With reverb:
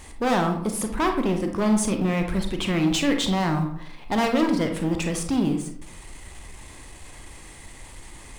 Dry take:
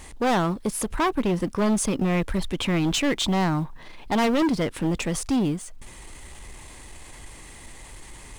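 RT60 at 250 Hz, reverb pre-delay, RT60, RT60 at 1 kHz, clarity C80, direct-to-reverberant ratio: 0.70 s, 30 ms, 0.65 s, 0.65 s, 10.5 dB, 4.5 dB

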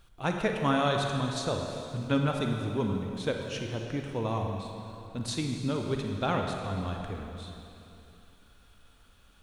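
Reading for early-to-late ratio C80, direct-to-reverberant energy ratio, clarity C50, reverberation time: 4.0 dB, 2.0 dB, 3.0 dB, 2.9 s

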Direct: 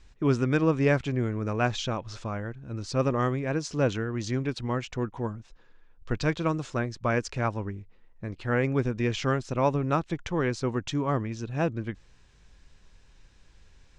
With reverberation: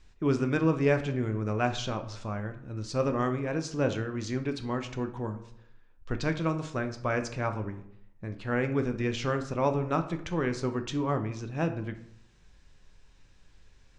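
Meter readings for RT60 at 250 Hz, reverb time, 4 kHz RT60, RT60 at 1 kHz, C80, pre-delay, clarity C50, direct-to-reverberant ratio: 0.75 s, 0.70 s, 0.45 s, 0.65 s, 15.5 dB, 5 ms, 12.0 dB, 7.0 dB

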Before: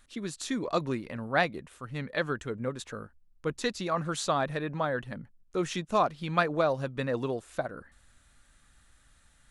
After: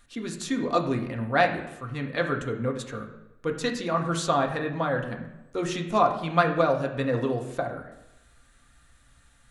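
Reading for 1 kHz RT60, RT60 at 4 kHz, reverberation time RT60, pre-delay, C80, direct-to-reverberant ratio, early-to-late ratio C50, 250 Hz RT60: 0.90 s, 0.70 s, 0.90 s, 3 ms, 11.0 dB, 2.0 dB, 8.5 dB, 0.85 s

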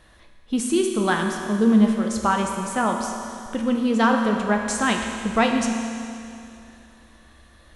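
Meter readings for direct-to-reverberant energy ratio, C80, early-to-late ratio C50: 1.5 dB, 4.5 dB, 3.5 dB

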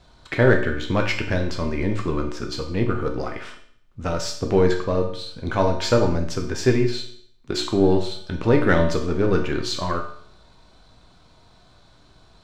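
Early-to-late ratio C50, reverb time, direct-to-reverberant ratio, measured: 7.5 dB, 0.60 s, 2.0 dB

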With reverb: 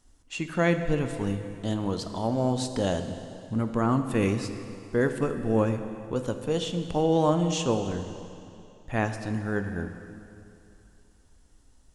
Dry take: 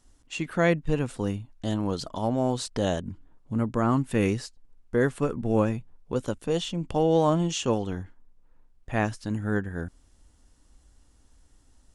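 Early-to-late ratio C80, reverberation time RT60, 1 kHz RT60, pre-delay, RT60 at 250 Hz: 9.5 dB, 2.8 s, 2.8 s, 4 ms, 2.7 s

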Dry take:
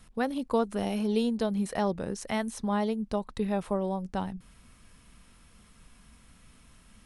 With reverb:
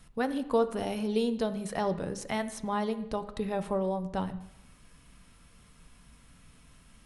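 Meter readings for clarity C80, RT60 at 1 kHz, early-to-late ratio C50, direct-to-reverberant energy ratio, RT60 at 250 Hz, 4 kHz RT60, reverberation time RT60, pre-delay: 15.5 dB, 0.85 s, 13.5 dB, 9.0 dB, 0.85 s, 0.90 s, 0.85 s, 6 ms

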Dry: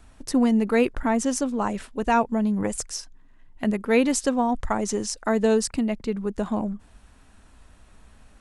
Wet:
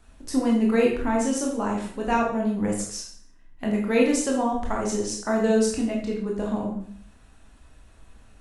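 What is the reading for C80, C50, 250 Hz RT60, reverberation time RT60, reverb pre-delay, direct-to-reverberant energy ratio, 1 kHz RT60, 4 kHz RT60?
8.0 dB, 4.5 dB, 0.65 s, 0.55 s, 18 ms, -2.0 dB, 0.55 s, 0.50 s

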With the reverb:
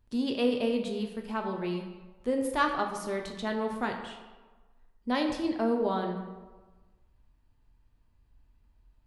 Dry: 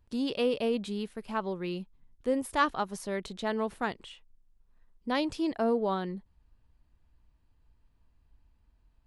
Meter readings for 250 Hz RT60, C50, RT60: 1.3 s, 6.0 dB, 1.3 s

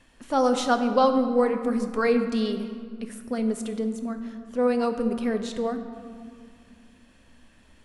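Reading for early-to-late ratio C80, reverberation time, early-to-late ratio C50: 9.5 dB, 2.2 s, 8.5 dB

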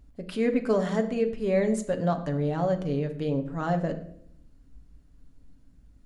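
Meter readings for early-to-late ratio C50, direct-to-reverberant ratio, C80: 12.0 dB, 5.0 dB, 14.5 dB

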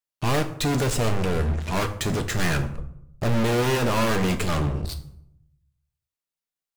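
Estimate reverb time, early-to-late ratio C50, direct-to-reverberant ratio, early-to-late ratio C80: 0.75 s, 12.5 dB, 6.0 dB, 15.5 dB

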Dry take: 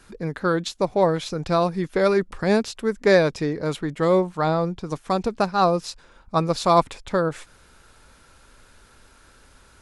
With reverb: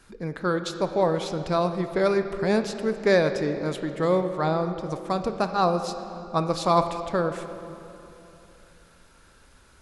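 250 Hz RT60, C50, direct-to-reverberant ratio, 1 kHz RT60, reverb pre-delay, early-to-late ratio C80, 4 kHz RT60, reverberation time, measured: 3.4 s, 9.0 dB, 8.0 dB, 2.8 s, 21 ms, 9.5 dB, 2.0 s, 3.0 s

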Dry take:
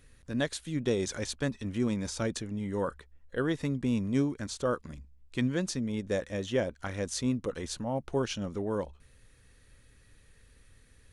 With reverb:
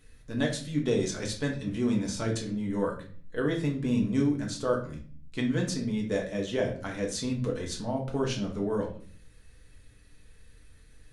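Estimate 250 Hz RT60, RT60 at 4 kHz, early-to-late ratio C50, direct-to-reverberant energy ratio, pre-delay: 0.80 s, 0.40 s, 9.0 dB, -0.5 dB, 5 ms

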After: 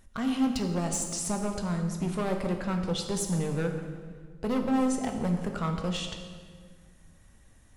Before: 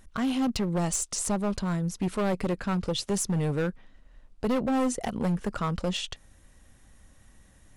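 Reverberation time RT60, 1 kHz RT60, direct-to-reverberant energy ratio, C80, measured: 1.7 s, 1.6 s, 3.5 dB, 7.5 dB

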